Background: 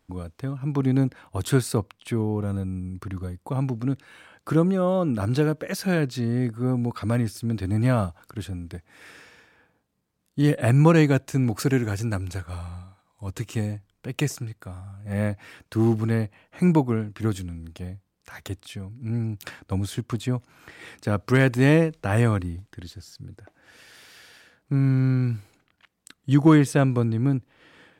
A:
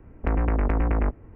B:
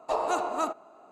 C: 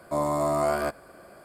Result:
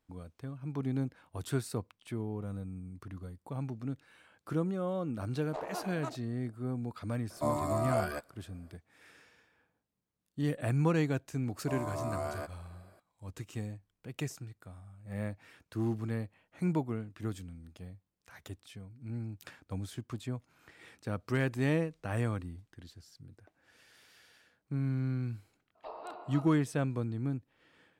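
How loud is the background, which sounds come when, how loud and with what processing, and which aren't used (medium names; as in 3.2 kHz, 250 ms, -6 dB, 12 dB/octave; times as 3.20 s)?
background -12 dB
5.44 s: add B -10.5 dB + local Wiener filter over 41 samples
7.30 s: add C -4.5 dB + reverb removal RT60 1.8 s
11.56 s: add C -12.5 dB
25.75 s: add B -17 dB + resampled via 11.025 kHz
not used: A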